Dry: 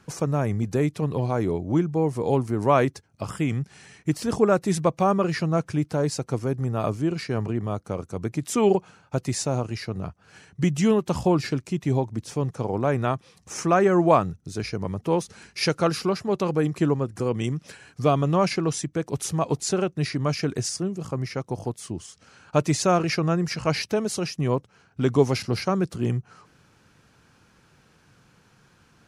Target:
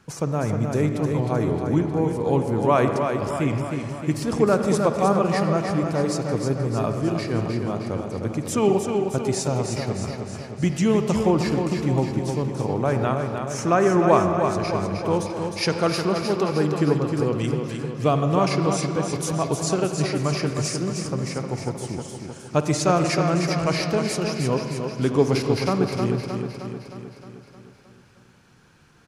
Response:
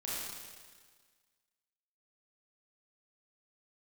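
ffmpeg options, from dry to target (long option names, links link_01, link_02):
-filter_complex "[0:a]aecho=1:1:310|620|930|1240|1550|1860|2170|2480:0.501|0.291|0.169|0.0978|0.0567|0.0329|0.0191|0.0111,asplit=2[link_01][link_02];[1:a]atrim=start_sample=2205,lowpass=4100,adelay=53[link_03];[link_02][link_03]afir=irnorm=-1:irlink=0,volume=-10dB[link_04];[link_01][link_04]amix=inputs=2:normalize=0"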